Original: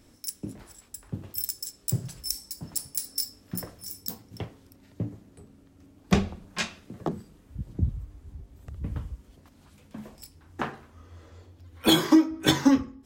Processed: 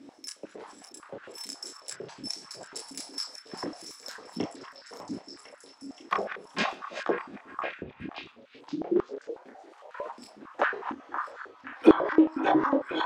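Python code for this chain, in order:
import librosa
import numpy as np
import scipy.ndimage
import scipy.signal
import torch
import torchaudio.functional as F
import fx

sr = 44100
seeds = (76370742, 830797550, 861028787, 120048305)

p1 = fx.reverse_delay(x, sr, ms=566, wet_db=-12.5)
p2 = 10.0 ** (-22.5 / 20.0) * np.tanh(p1 / 10.0 ** (-22.5 / 20.0))
p3 = p1 + (p2 * librosa.db_to_amplitude(-5.5))
p4 = fx.air_absorb(p3, sr, metres=81.0)
p5 = fx.env_lowpass_down(p4, sr, base_hz=830.0, full_db=-17.0)
p6 = fx.doubler(p5, sr, ms=29.0, db=-4)
p7 = p6 + fx.echo_stepped(p6, sr, ms=526, hz=1200.0, octaves=0.7, feedback_pct=70, wet_db=-3.5, dry=0)
p8 = fx.ring_mod(p7, sr, carrier_hz=fx.line((8.31, 150.0), (10.11, 870.0)), at=(8.31, 10.11), fade=0.02)
p9 = fx.filter_held_highpass(p8, sr, hz=11.0, low_hz=270.0, high_hz=1500.0)
y = p9 * librosa.db_to_amplitude(-2.0)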